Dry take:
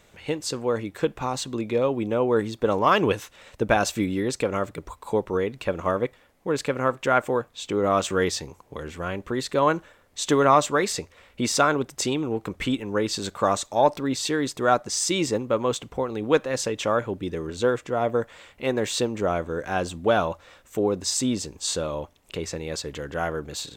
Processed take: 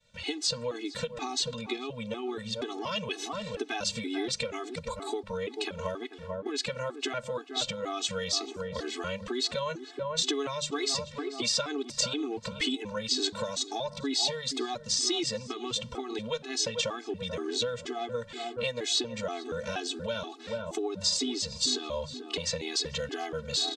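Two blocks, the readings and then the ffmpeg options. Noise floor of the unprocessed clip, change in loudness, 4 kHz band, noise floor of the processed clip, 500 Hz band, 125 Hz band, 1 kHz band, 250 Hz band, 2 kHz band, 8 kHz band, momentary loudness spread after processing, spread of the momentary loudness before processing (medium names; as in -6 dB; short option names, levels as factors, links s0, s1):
-58 dBFS, -6.5 dB, +3.0 dB, -47 dBFS, -10.0 dB, -10.0 dB, -12.5 dB, -9.0 dB, -8.0 dB, -3.0 dB, 8 LU, 10 LU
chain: -filter_complex "[0:a]lowpass=f=9900:w=0.5412,lowpass=f=9900:w=1.3066,lowshelf=f=490:g=3.5,bandreject=f=50:t=h:w=6,bandreject=f=100:t=h:w=6,bandreject=f=150:t=h:w=6,bandreject=f=200:t=h:w=6,agate=range=0.0224:threshold=0.00562:ratio=3:detection=peak,asplit=2[s0][s1];[s1]adelay=438,lowpass=f=1200:p=1,volume=0.211,asplit=2[s2][s3];[s3]adelay=438,lowpass=f=1200:p=1,volume=0.33,asplit=2[s4][s5];[s5]adelay=438,lowpass=f=1200:p=1,volume=0.33[s6];[s2][s4][s6]amix=inputs=3:normalize=0[s7];[s0][s7]amix=inputs=2:normalize=0,acompressor=threshold=0.0398:ratio=3,equalizer=f=4200:t=o:w=1.3:g=11.5,acrossover=split=270|1000|2100|7800[s8][s9][s10][s11][s12];[s8]acompressor=threshold=0.00562:ratio=4[s13];[s9]acompressor=threshold=0.02:ratio=4[s14];[s10]acompressor=threshold=0.00398:ratio=4[s15];[s11]acompressor=threshold=0.0447:ratio=4[s16];[s12]acompressor=threshold=0.00447:ratio=4[s17];[s13][s14][s15][s16][s17]amix=inputs=5:normalize=0,afftfilt=real='re*gt(sin(2*PI*2.1*pts/sr)*(1-2*mod(floor(b*sr/1024/220),2)),0)':imag='im*gt(sin(2*PI*2.1*pts/sr)*(1-2*mod(floor(b*sr/1024/220),2)),0)':win_size=1024:overlap=0.75,volume=1.58"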